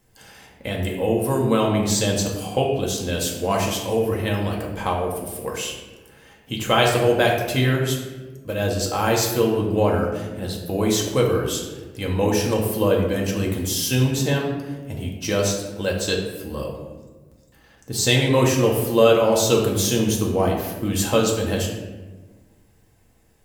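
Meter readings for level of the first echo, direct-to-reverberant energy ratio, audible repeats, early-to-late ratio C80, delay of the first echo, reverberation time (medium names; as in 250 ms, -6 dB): no echo, -1.5 dB, no echo, 6.0 dB, no echo, 1.3 s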